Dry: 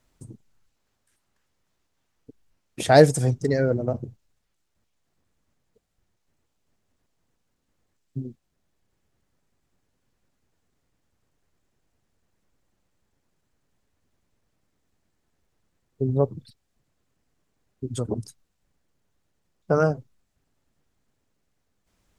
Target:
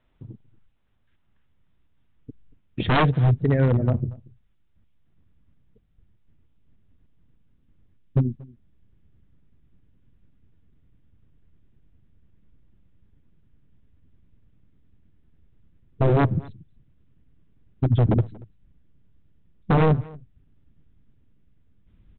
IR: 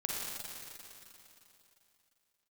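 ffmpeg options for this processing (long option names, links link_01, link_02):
-filter_complex "[0:a]asubboost=boost=7:cutoff=250,aeval=exprs='0.891*(cos(1*acos(clip(val(0)/0.891,-1,1)))-cos(1*PI/2))+0.02*(cos(4*acos(clip(val(0)/0.891,-1,1)))-cos(4*PI/2))':channel_layout=same,aresample=8000,aeval=exprs='0.237*(abs(mod(val(0)/0.237+3,4)-2)-1)':channel_layout=same,aresample=44100,asplit=2[link_01][link_02];[link_02]adelay=233.2,volume=-23dB,highshelf=frequency=4000:gain=-5.25[link_03];[link_01][link_03]amix=inputs=2:normalize=0"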